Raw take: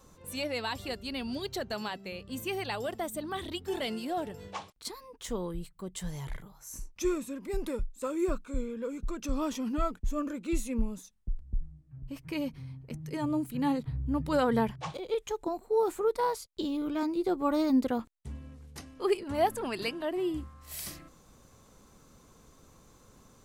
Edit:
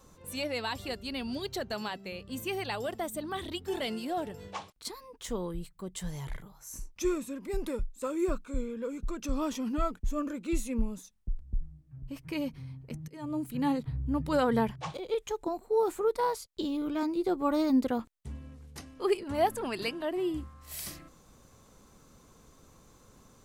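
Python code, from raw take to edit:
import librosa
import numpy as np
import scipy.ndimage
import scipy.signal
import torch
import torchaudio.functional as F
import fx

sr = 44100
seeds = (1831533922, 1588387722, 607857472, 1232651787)

y = fx.edit(x, sr, fx.fade_in_from(start_s=13.08, length_s=0.43, floor_db=-19.5), tone=tone)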